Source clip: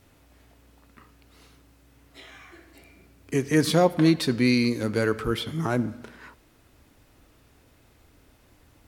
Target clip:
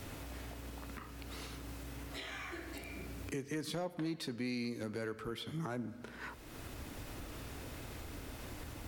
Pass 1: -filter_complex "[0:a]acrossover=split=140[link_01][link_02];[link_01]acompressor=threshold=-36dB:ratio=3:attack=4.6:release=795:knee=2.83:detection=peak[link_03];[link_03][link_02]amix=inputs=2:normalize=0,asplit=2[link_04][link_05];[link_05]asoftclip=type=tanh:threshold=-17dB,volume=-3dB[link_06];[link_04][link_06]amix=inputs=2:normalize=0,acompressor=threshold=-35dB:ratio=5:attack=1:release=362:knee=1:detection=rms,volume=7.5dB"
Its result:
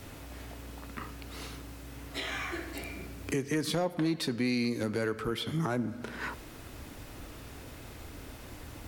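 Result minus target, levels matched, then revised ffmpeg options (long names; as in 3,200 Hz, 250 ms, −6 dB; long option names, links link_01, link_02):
downward compressor: peak gain reduction −9 dB
-filter_complex "[0:a]acrossover=split=140[link_01][link_02];[link_01]acompressor=threshold=-36dB:ratio=3:attack=4.6:release=795:knee=2.83:detection=peak[link_03];[link_03][link_02]amix=inputs=2:normalize=0,asplit=2[link_04][link_05];[link_05]asoftclip=type=tanh:threshold=-17dB,volume=-3dB[link_06];[link_04][link_06]amix=inputs=2:normalize=0,acompressor=threshold=-46dB:ratio=5:attack=1:release=362:knee=1:detection=rms,volume=7.5dB"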